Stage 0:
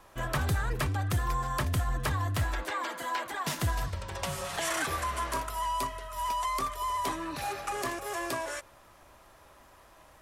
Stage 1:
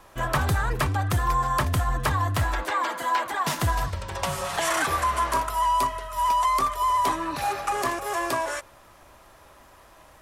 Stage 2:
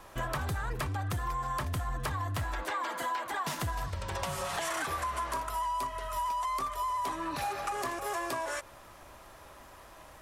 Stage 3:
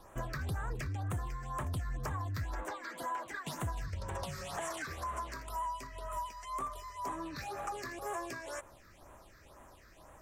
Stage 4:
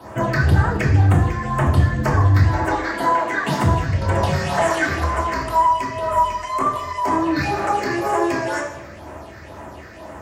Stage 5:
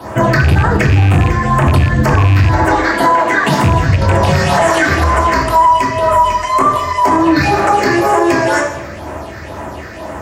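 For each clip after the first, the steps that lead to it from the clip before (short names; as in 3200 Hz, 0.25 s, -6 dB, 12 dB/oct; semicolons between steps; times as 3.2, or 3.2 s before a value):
dynamic EQ 970 Hz, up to +5 dB, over -43 dBFS, Q 1.2; gain +4.5 dB
compressor 5:1, threshold -31 dBFS, peak gain reduction 10.5 dB; soft clip -23 dBFS, distortion -26 dB
phaser stages 6, 2 Hz, lowest notch 780–4700 Hz; gain -3.5 dB
reverb RT60 0.90 s, pre-delay 3 ms, DRR -3 dB; gain +8 dB
rattling part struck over -14 dBFS, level -16 dBFS; maximiser +12 dB; gain -1.5 dB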